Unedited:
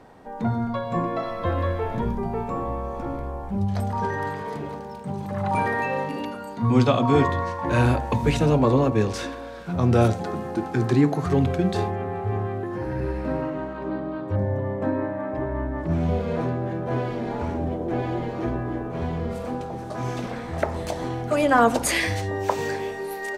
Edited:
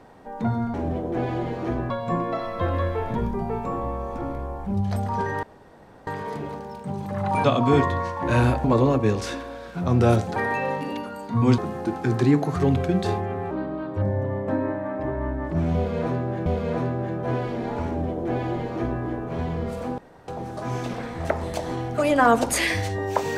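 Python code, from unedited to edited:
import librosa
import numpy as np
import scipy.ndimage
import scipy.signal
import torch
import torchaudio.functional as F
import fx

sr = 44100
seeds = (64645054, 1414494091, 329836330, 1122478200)

y = fx.edit(x, sr, fx.insert_room_tone(at_s=4.27, length_s=0.64),
    fx.move(start_s=5.64, length_s=1.22, to_s=10.28),
    fx.cut(start_s=8.06, length_s=0.5),
    fx.cut(start_s=12.21, length_s=1.64),
    fx.repeat(start_s=16.09, length_s=0.71, count=2),
    fx.duplicate(start_s=17.5, length_s=1.16, to_s=0.74),
    fx.insert_room_tone(at_s=19.61, length_s=0.3), tone=tone)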